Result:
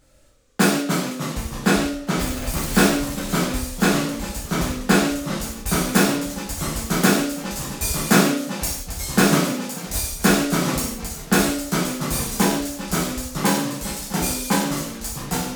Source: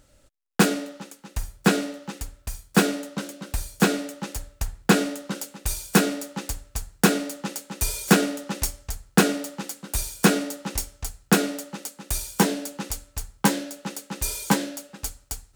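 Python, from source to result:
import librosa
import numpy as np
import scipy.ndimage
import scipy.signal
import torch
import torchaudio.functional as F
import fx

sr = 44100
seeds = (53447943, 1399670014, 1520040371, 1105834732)

y = fx.zero_step(x, sr, step_db=-23.5, at=(2.19, 2.87))
y = fx.rev_gated(y, sr, seeds[0], gate_ms=210, shape='falling', drr_db=-6.5)
y = fx.echo_pitch(y, sr, ms=223, semitones=-2, count=3, db_per_echo=-6.0)
y = y * librosa.db_to_amplitude(-4.0)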